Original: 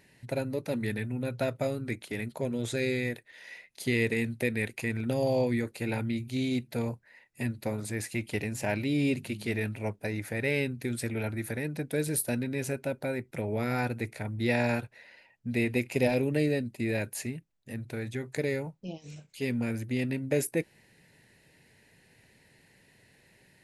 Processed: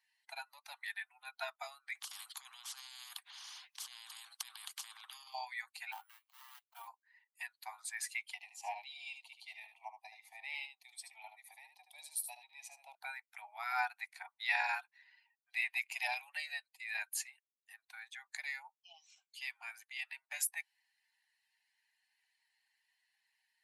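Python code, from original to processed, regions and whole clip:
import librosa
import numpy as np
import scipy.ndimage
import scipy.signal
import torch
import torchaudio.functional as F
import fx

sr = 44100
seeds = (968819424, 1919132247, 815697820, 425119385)

y = fx.chain(x, sr, fx.high_shelf(hz=2600.0, db=-7.0),
    fx.over_compress(threshold_db=-35.0, ratio=-1.0),
    fx.spectral_comp(ratio=10.0), at=(1.95, 5.34))
y = fx.chain(y, sr, fx.median_filter(points=25),
    fx.highpass(hz=410.0, slope=6),
    fx.resample_bad(factor=4, down='none', up='hold'), at=(5.92, 6.88))
y = fx.chain(y, sr, fx.high_shelf(hz=5400.0, db=-9.5),
    fx.fixed_phaser(hz=410.0, stages=6),
    fx.echo_single(ms=75, db=-6.0), at=(8.34, 12.95))
y = fx.bin_expand(y, sr, power=1.5)
y = scipy.signal.sosfilt(scipy.signal.butter(16, 730.0, 'highpass', fs=sr, output='sos'), y)
y = y * 10.0 ** (1.5 / 20.0)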